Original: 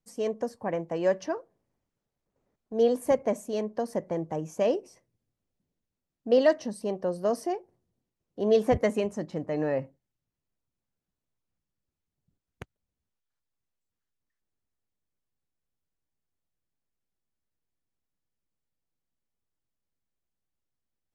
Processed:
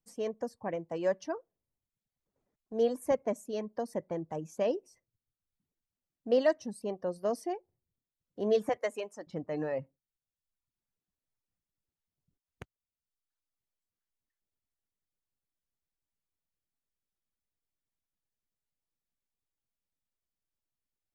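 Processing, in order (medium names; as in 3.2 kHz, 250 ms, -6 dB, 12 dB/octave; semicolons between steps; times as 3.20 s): 8.69–9.27 s: high-pass 480 Hz 12 dB/octave; reverb removal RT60 0.8 s; trim -4.5 dB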